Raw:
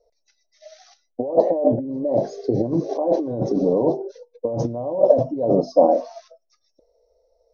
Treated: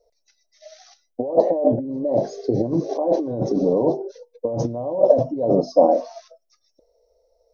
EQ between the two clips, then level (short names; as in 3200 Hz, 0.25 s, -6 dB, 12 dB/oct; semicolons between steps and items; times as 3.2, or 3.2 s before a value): high shelf 5000 Hz +4.5 dB; 0.0 dB